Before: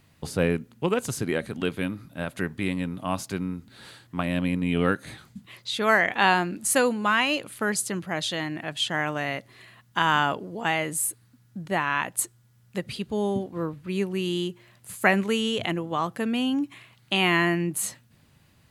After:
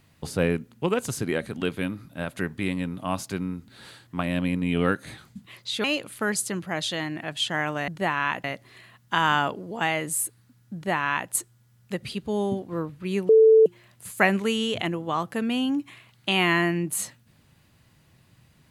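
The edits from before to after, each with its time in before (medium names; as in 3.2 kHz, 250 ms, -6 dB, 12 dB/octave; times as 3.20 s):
5.84–7.24 s: delete
11.58–12.14 s: copy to 9.28 s
14.13–14.50 s: bleep 442 Hz -11 dBFS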